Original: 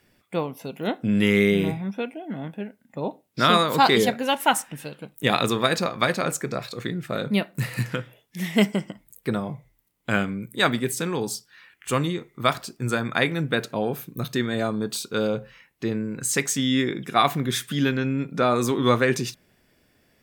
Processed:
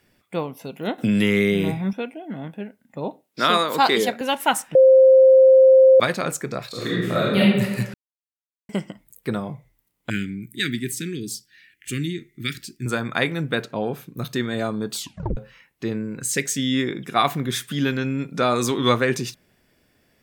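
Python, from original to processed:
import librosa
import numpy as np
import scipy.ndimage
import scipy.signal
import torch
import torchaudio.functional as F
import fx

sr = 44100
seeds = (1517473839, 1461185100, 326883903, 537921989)

y = fx.band_squash(x, sr, depth_pct=70, at=(0.98, 1.93))
y = fx.highpass(y, sr, hz=250.0, slope=12, at=(3.24, 4.21))
y = fx.reverb_throw(y, sr, start_s=6.69, length_s=0.71, rt60_s=1.2, drr_db=-7.0)
y = fx.cheby1_bandstop(y, sr, low_hz=350.0, high_hz=1800.0, order=3, at=(10.1, 12.86))
y = fx.high_shelf(y, sr, hz=fx.line((13.61, 6600.0), (14.18, 11000.0)), db=-11.0, at=(13.61, 14.18), fade=0.02)
y = fx.band_shelf(y, sr, hz=990.0, db=-13.0, octaves=1.0, at=(16.23, 16.74))
y = fx.peak_eq(y, sr, hz=fx.line((17.88, 12000.0), (18.92, 3500.0)), db=6.0, octaves=2.3, at=(17.88, 18.92), fade=0.02)
y = fx.edit(y, sr, fx.bleep(start_s=4.75, length_s=1.25, hz=526.0, db=-8.0),
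    fx.silence(start_s=7.94, length_s=0.75),
    fx.tape_stop(start_s=14.95, length_s=0.42), tone=tone)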